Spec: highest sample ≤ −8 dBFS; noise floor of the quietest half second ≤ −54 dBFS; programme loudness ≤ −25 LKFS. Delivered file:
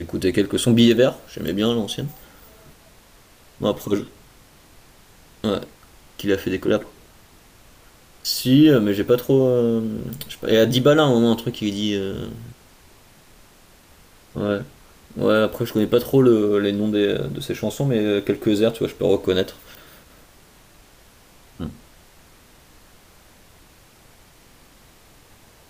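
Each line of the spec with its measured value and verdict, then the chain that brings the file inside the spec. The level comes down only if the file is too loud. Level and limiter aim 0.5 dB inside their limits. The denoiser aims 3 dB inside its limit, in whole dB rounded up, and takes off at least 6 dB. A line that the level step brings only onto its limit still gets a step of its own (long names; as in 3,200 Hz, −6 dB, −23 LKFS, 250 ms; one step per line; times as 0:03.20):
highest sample −5.0 dBFS: out of spec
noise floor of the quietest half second −51 dBFS: out of spec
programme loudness −20.0 LKFS: out of spec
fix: level −5.5 dB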